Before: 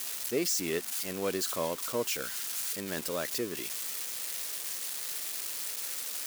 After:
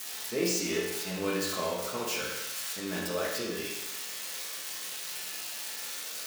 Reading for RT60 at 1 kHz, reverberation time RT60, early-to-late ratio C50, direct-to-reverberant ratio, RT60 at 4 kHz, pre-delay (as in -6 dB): 1.0 s, 1.0 s, 1.0 dB, -6.5 dB, 0.95 s, 5 ms